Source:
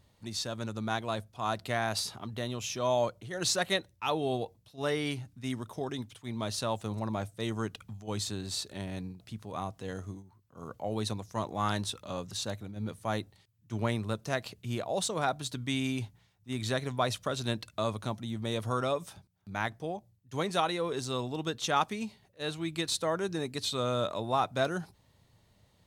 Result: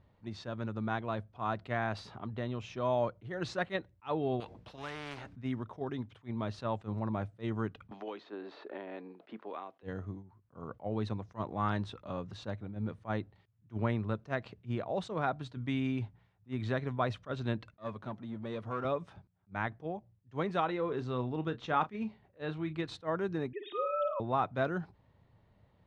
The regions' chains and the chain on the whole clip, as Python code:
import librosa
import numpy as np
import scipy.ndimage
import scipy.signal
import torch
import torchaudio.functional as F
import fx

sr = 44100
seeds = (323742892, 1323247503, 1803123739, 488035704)

y = fx.chain(x, sr, fx.high_shelf(hz=8300.0, db=3.0),
    fx.spectral_comp(ratio=4.0), at=(4.4, 5.36))
y = fx.chain(y, sr, fx.highpass(hz=320.0, slope=24),
    fx.air_absorb(metres=240.0),
    fx.band_squash(depth_pct=100), at=(7.91, 9.83))
y = fx.chain(y, sr, fx.halfwave_gain(db=-7.0),
    fx.highpass(hz=130.0, slope=12), at=(17.74, 18.85))
y = fx.chain(y, sr, fx.high_shelf(hz=8200.0, db=-12.0),
    fx.doubler(ms=32.0, db=-12.0), at=(20.65, 22.84))
y = fx.chain(y, sr, fx.sine_speech(),
    fx.room_flutter(wall_m=9.2, rt60_s=0.4), at=(23.53, 24.2))
y = scipy.signal.sosfilt(scipy.signal.butter(2, 1900.0, 'lowpass', fs=sr, output='sos'), y)
y = fx.dynamic_eq(y, sr, hz=690.0, q=1.1, threshold_db=-42.0, ratio=4.0, max_db=-3)
y = fx.attack_slew(y, sr, db_per_s=360.0)